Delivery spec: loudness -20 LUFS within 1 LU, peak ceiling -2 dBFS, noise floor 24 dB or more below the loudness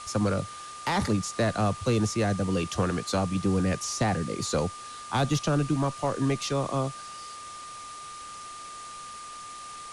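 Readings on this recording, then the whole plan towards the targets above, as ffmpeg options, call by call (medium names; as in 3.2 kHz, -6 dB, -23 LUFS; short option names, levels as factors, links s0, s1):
steady tone 1.2 kHz; tone level -40 dBFS; noise floor -42 dBFS; noise floor target -52 dBFS; loudness -28.0 LUFS; peak level -15.5 dBFS; loudness target -20.0 LUFS
-> -af "bandreject=f=1200:w=30"
-af "afftdn=nr=10:nf=-42"
-af "volume=2.51"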